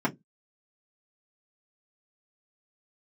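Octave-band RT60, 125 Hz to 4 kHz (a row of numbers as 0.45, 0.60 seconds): 0.25, 0.20, 0.20, 0.10, 0.10, 0.10 seconds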